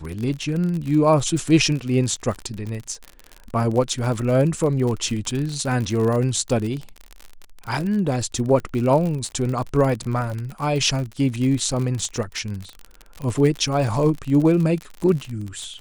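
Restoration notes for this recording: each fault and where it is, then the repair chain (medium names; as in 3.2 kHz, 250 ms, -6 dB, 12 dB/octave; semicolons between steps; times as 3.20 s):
crackle 51 per s -26 dBFS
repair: de-click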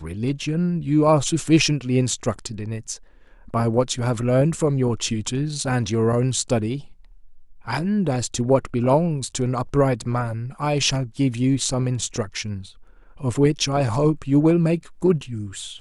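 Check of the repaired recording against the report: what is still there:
nothing left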